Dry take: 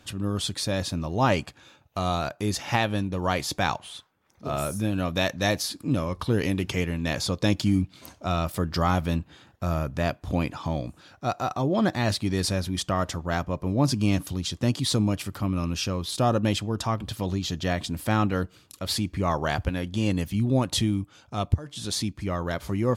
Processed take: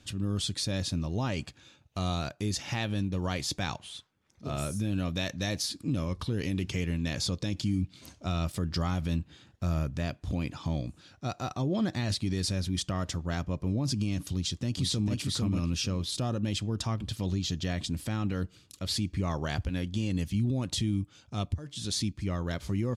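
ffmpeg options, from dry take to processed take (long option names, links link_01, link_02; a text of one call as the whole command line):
ffmpeg -i in.wav -filter_complex "[0:a]asplit=2[link_01][link_02];[link_02]afade=type=in:start_time=14.32:duration=0.01,afade=type=out:start_time=15.14:duration=0.01,aecho=0:1:450|900|1350:0.595662|0.0893493|0.0134024[link_03];[link_01][link_03]amix=inputs=2:normalize=0,lowpass=8900,equalizer=frequency=890:width_type=o:width=2.5:gain=-9.5,alimiter=limit=-21dB:level=0:latency=1:release=50" out.wav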